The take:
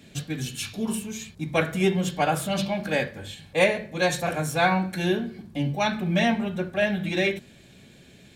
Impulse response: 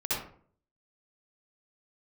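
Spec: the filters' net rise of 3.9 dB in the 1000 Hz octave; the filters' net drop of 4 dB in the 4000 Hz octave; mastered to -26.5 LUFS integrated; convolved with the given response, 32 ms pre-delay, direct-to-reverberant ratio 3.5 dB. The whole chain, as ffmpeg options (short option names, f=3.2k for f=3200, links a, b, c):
-filter_complex "[0:a]equalizer=f=1k:t=o:g=6,equalizer=f=4k:t=o:g=-5.5,asplit=2[a][b];[1:a]atrim=start_sample=2205,adelay=32[c];[b][c]afir=irnorm=-1:irlink=0,volume=-11dB[d];[a][d]amix=inputs=2:normalize=0,volume=-3.5dB"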